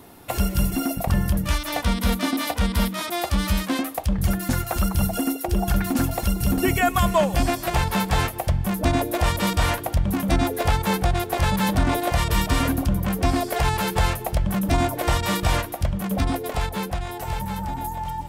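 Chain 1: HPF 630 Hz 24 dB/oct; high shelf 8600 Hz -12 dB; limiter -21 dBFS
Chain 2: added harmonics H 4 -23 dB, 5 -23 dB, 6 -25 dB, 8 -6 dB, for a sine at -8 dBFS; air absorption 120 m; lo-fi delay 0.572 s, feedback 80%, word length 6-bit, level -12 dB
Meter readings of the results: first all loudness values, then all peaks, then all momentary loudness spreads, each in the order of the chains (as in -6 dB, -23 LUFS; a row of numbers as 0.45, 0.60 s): -32.0, -18.5 LUFS; -21.0, -4.0 dBFS; 5, 4 LU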